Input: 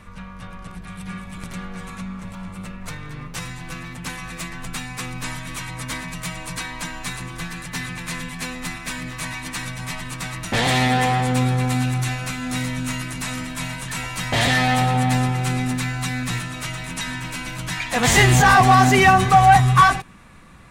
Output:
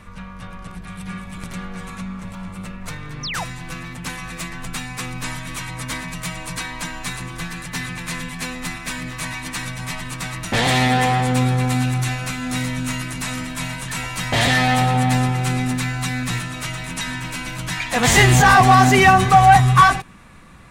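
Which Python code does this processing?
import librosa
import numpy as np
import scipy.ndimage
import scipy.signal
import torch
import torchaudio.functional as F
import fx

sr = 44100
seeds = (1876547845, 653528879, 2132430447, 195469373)

y = fx.spec_paint(x, sr, seeds[0], shape='fall', start_s=3.23, length_s=0.21, low_hz=600.0, high_hz=6400.0, level_db=-29.0)
y = y * librosa.db_to_amplitude(1.5)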